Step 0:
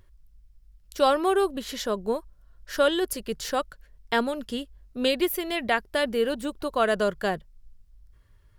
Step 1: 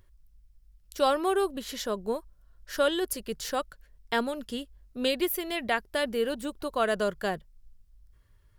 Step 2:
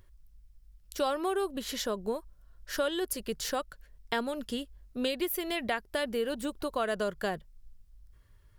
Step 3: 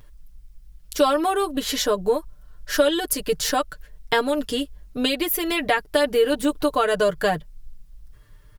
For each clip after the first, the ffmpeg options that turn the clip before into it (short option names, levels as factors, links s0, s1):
-af "highshelf=f=6900:g=4,volume=0.668"
-af "acompressor=threshold=0.0282:ratio=2.5,volume=1.19"
-af "aecho=1:1:6.7:0.84,volume=2.66"